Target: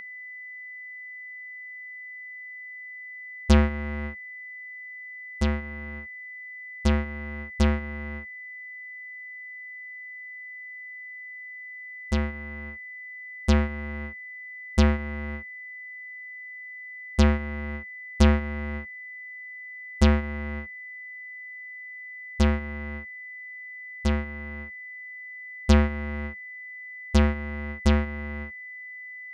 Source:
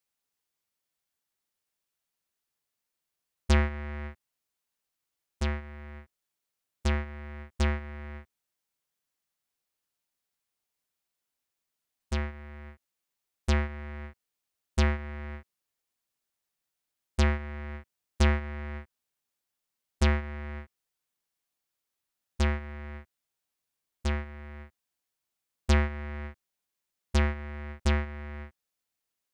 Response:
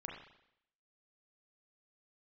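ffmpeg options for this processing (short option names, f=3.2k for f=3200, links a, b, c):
-af "aeval=exprs='val(0)+0.02*sin(2*PI*2000*n/s)':c=same,equalizer=f=200:t=o:w=0.33:g=10,equalizer=f=500:t=o:w=0.33:g=4,equalizer=f=2k:t=o:w=0.33:g=-8,equalizer=f=8k:t=o:w=0.33:g=-4,volume=4dB"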